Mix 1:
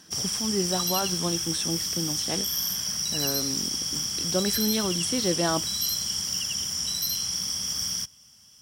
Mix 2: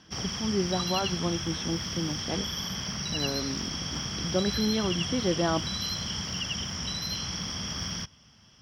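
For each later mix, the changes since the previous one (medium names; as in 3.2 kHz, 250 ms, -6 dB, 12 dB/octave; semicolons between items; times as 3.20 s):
background +8.0 dB; master: add distance through air 290 m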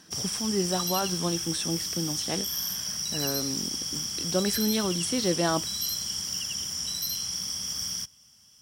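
background -11.0 dB; master: remove distance through air 290 m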